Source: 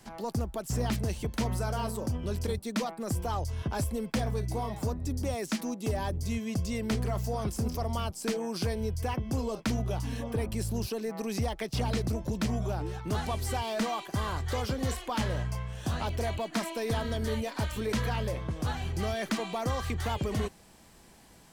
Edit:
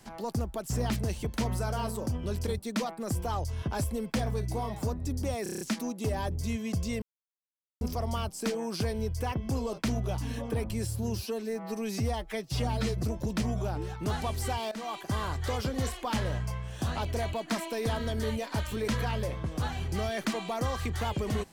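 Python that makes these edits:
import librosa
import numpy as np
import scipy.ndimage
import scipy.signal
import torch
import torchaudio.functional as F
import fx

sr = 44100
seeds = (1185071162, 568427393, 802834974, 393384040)

y = fx.edit(x, sr, fx.stutter(start_s=5.43, slice_s=0.03, count=7),
    fx.silence(start_s=6.84, length_s=0.79),
    fx.stretch_span(start_s=10.53, length_s=1.55, factor=1.5),
    fx.fade_in_from(start_s=13.76, length_s=0.27, floor_db=-17.0), tone=tone)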